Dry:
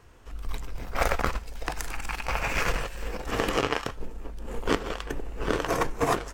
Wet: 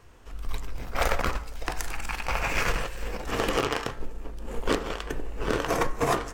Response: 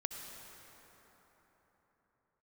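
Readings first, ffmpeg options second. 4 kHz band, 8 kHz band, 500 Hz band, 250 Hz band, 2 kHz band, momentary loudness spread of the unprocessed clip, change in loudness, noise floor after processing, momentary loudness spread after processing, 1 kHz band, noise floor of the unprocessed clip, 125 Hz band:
+1.0 dB, +1.0 dB, +0.5 dB, 0.0 dB, +0.5 dB, 13 LU, +0.5 dB, −41 dBFS, 13 LU, 0.0 dB, −42 dBFS, 0.0 dB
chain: -af "bandreject=frequency=57.12:width_type=h:width=4,bandreject=frequency=114.24:width_type=h:width=4,bandreject=frequency=171.36:width_type=h:width=4,bandreject=frequency=228.48:width_type=h:width=4,bandreject=frequency=285.6:width_type=h:width=4,bandreject=frequency=342.72:width_type=h:width=4,bandreject=frequency=399.84:width_type=h:width=4,bandreject=frequency=456.96:width_type=h:width=4,bandreject=frequency=514.08:width_type=h:width=4,bandreject=frequency=571.2:width_type=h:width=4,bandreject=frequency=628.32:width_type=h:width=4,bandreject=frequency=685.44:width_type=h:width=4,bandreject=frequency=742.56:width_type=h:width=4,bandreject=frequency=799.68:width_type=h:width=4,bandreject=frequency=856.8:width_type=h:width=4,bandreject=frequency=913.92:width_type=h:width=4,bandreject=frequency=971.04:width_type=h:width=4,bandreject=frequency=1028.16:width_type=h:width=4,bandreject=frequency=1085.28:width_type=h:width=4,bandreject=frequency=1142.4:width_type=h:width=4,bandreject=frequency=1199.52:width_type=h:width=4,bandreject=frequency=1256.64:width_type=h:width=4,bandreject=frequency=1313.76:width_type=h:width=4,bandreject=frequency=1370.88:width_type=h:width=4,bandreject=frequency=1428:width_type=h:width=4,bandreject=frequency=1485.12:width_type=h:width=4,bandreject=frequency=1542.24:width_type=h:width=4,bandreject=frequency=1599.36:width_type=h:width=4,bandreject=frequency=1656.48:width_type=h:width=4,bandreject=frequency=1713.6:width_type=h:width=4,bandreject=frequency=1770.72:width_type=h:width=4,bandreject=frequency=1827.84:width_type=h:width=4,bandreject=frequency=1884.96:width_type=h:width=4,bandreject=frequency=1942.08:width_type=h:width=4,bandreject=frequency=1999.2:width_type=h:width=4,bandreject=frequency=2056.32:width_type=h:width=4,flanger=delay=1.7:depth=7.5:regen=87:speed=1.7:shape=sinusoidal,aeval=exprs='0.141*(abs(mod(val(0)/0.141+3,4)-2)-1)':channel_layout=same,volume=5.5dB"

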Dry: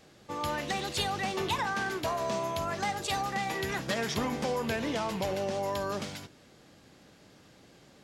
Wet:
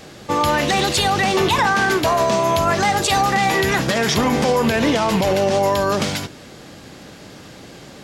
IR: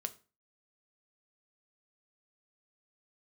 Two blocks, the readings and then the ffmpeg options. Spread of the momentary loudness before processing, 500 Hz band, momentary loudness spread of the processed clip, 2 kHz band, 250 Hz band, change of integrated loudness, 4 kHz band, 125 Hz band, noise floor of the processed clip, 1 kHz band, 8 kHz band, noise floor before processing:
4 LU, +14.5 dB, 3 LU, +14.5 dB, +15.0 dB, +14.5 dB, +14.0 dB, +15.0 dB, −41 dBFS, +14.5 dB, +15.0 dB, −58 dBFS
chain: -af "alimiter=level_in=25dB:limit=-1dB:release=50:level=0:latency=1,volume=-7.5dB"

